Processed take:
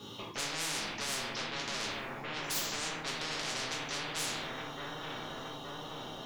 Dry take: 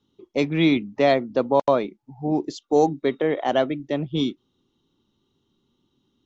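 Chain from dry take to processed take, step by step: high-pass 110 Hz 12 dB/octave; reverse; compression, threshold -26 dBFS, peak gain reduction 12.5 dB; reverse; peak limiter -24.5 dBFS, peak gain reduction 8.5 dB; saturation -35.5 dBFS, distortion -9 dB; feedback echo behind a low-pass 870 ms, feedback 37%, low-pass 1 kHz, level -7.5 dB; simulated room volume 85 m³, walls mixed, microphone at 1.4 m; spectrum-flattening compressor 10:1

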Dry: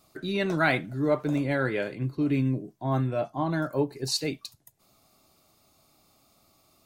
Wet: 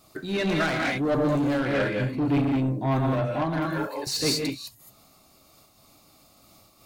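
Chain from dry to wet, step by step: 3.65–4.07 s: high-pass 790 Hz 12 dB/octave; gated-style reverb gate 230 ms rising, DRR 0.5 dB; saturation -25 dBFS, distortion -9 dB; 0.98–1.65 s: peaking EQ 2.2 kHz -7.5 dB 0.59 oct; random flutter of the level, depth 60%; trim +7 dB

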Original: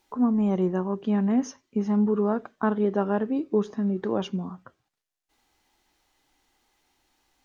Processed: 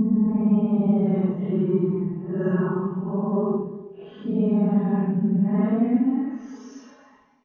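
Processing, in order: low-pass 2.3 kHz 12 dB/octave; comb 4.7 ms, depth 95%; compression, threshold -19 dBFS, peak gain reduction 7.5 dB; Paulstretch 5.8×, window 0.05 s, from 0.33 s; on a send: delay 265 ms -19 dB

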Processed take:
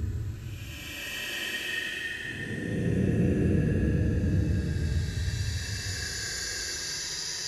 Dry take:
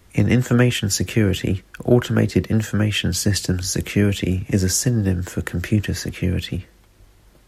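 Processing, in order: level-controlled noise filter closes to 2.4 kHz, open at -15 dBFS; Paulstretch 39×, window 0.05 s, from 5.81 s; trim -5 dB

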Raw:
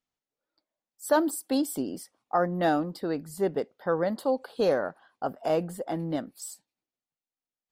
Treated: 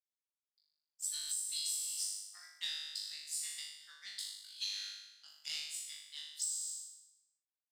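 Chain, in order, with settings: Chebyshev high-pass 2.1 kHz, order 4; band-stop 4.5 kHz, Q 18; power-law waveshaper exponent 1.4; high-order bell 5.3 kHz +11.5 dB; on a send: flutter echo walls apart 3.4 m, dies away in 0.92 s; on the sum: compression 10:1, threshold -35 dBFS, peak gain reduction 14 dB; tremolo triangle 0.62 Hz, depth 35%; trim +2.5 dB

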